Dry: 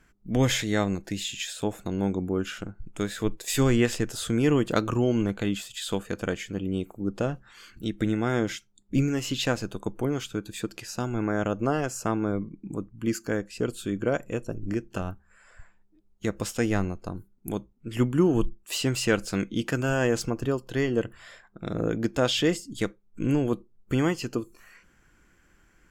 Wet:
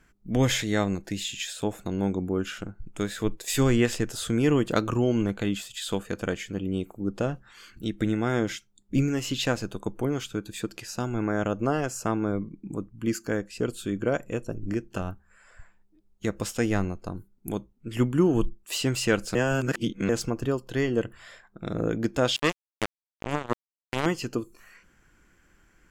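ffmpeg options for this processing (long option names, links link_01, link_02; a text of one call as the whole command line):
ffmpeg -i in.wav -filter_complex "[0:a]asettb=1/sr,asplit=3[link_01][link_02][link_03];[link_01]atrim=end=22.364[link_04];[link_02]atrim=start=22.36:end=24.06,asetpts=PTS-STARTPTS,afade=type=in:duration=0.004:curve=qsin,afade=type=out:start_time=1.696:duration=0.004:curve=qsin,acrusher=bits=2:mix=0:aa=0.5[link_05];[link_03]atrim=start=24.056[link_06];[link_04][link_05]acrossfade=duration=0.004:curve1=hsin:curve2=qsin[link_07];[link_07][link_06]acrossfade=duration=0.004:curve1=qsin:curve2=hsin,asplit=3[link_08][link_09][link_10];[link_08]atrim=end=19.352[link_11];[link_09]atrim=start=19.348:end=20.092,asetpts=PTS-STARTPTS,areverse[link_12];[link_10]atrim=start=20.088[link_13];[link_11][link_12]acrossfade=duration=0.004:curve1=hsin:curve2=hsin[link_14];[link_14][link_13]acrossfade=duration=0.004:curve1=hsin:curve2=hsin" out.wav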